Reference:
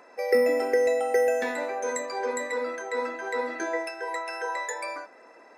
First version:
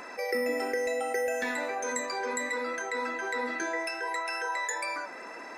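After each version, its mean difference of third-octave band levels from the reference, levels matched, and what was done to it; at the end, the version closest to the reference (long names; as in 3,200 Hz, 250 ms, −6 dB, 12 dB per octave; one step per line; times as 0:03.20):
5.0 dB: parametric band 540 Hz −7.5 dB 1.5 octaves
flanger 0.68 Hz, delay 0.3 ms, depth 5.6 ms, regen +82%
envelope flattener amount 50%
level +1.5 dB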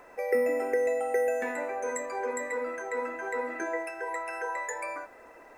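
2.5 dB: flat-topped bell 4,300 Hz −13 dB 1 octave
in parallel at +1 dB: downward compressor, threshold −35 dBFS, peak gain reduction 16.5 dB
on the sum: background noise pink −63 dBFS
level −6 dB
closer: second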